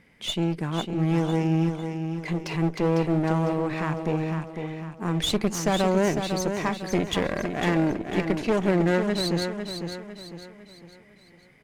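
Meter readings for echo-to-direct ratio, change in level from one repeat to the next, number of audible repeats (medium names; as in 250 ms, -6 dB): -6.0 dB, -7.5 dB, 4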